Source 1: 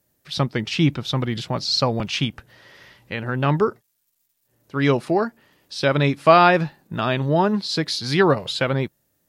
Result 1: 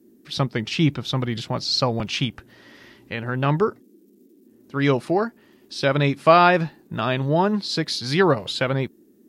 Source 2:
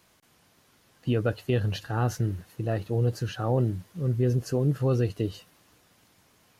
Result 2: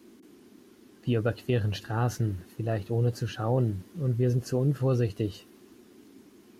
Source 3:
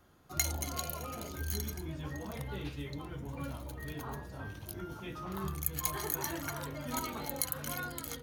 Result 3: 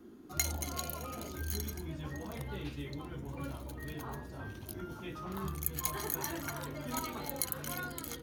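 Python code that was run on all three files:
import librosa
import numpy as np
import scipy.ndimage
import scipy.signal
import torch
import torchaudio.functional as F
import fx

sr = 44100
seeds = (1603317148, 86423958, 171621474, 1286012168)

y = fx.dmg_noise_band(x, sr, seeds[0], low_hz=200.0, high_hz=390.0, level_db=-53.0)
y = y * 10.0 ** (-1.0 / 20.0)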